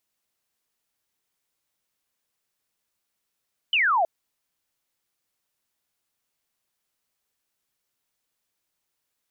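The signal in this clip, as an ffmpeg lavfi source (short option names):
-f lavfi -i "aevalsrc='0.126*clip(t/0.002,0,1)*clip((0.32-t)/0.002,0,1)*sin(2*PI*3100*0.32/log(630/3100)*(exp(log(630/3100)*t/0.32)-1))':d=0.32:s=44100"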